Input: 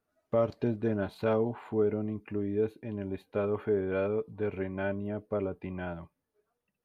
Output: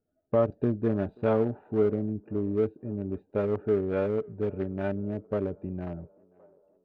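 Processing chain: local Wiener filter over 41 samples; treble shelf 3.6 kHz -10 dB; band-passed feedback delay 533 ms, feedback 68%, band-pass 700 Hz, level -23 dB; trim +4 dB

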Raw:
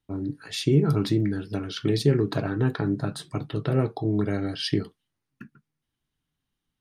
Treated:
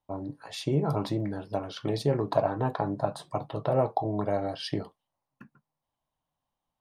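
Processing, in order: high-order bell 760 Hz +16 dB 1.3 oct; trim -7 dB

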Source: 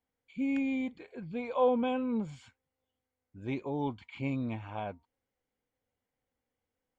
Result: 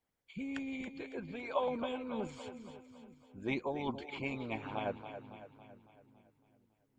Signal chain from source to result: two-band feedback delay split 330 Hz, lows 433 ms, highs 278 ms, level -10 dB; harmonic-percussive split harmonic -16 dB; trim +6 dB

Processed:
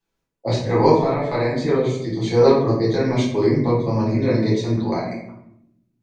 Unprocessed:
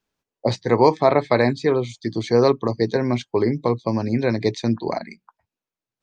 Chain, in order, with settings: 2.90–3.60 s: treble shelf 4.1 kHz +7 dB; transient shaper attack -4 dB, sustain +1 dB; 0.98–1.60 s: compression 3:1, threshold -20 dBFS, peak gain reduction 6.5 dB; 4.15–4.68 s: comb of notches 790 Hz; reverberation RT60 0.75 s, pre-delay 6 ms, DRR -8 dB; trim -7 dB

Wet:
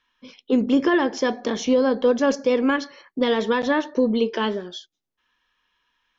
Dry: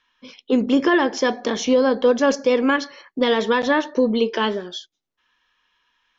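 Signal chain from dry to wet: bass shelf 400 Hz +4.5 dB; trim -4 dB

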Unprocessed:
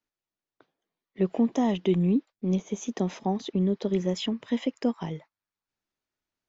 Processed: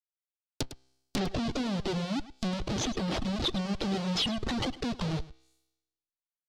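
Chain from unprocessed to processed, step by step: recorder AGC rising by 38 dB/s; peaking EQ 180 Hz +5.5 dB 2.8 oct; Schmitt trigger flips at -36.5 dBFS; band-stop 990 Hz, Q 22; feedback comb 65 Hz, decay 1 s, harmonics all, mix 50%; low-pass that closes with the level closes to 2.3 kHz, closed at -32.5 dBFS; resonant high shelf 2.9 kHz +14 dB, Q 1.5; on a send: delay 105 ms -9 dB; on the sum: reverb removal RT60 0.95 s

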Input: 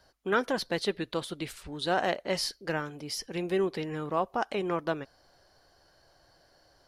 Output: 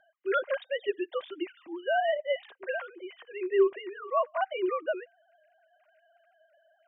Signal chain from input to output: formants replaced by sine waves; comb of notches 440 Hz; trim +2.5 dB

